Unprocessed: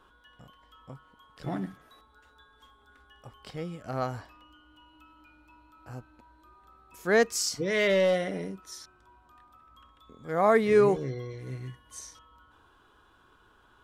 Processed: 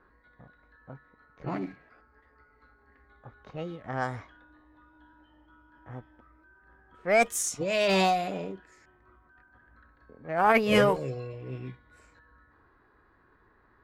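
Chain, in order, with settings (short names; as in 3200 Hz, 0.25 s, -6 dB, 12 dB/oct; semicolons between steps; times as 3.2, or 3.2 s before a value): formant shift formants +4 st; low-pass opened by the level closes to 1400 Hz, open at -23.5 dBFS; added harmonics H 2 -13 dB, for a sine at -6.5 dBFS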